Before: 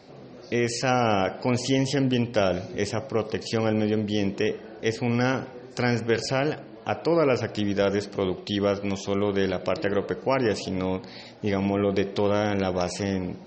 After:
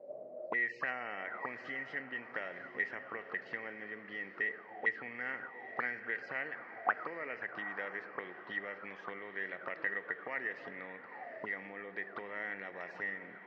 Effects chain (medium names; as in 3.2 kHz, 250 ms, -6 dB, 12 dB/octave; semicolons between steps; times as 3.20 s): gate -35 dBFS, range -8 dB; tilt shelf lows +6.5 dB, about 890 Hz; compression 8:1, threshold -23 dBFS, peak gain reduction 10 dB; auto-wah 550–1900 Hz, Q 19, up, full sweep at -24 dBFS; Chebyshev shaper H 2 -27 dB, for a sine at -32 dBFS; band-pass 130–3600 Hz; on a send: echo that smears into a reverb 865 ms, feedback 44%, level -12.5 dB; on the sum: trim +18 dB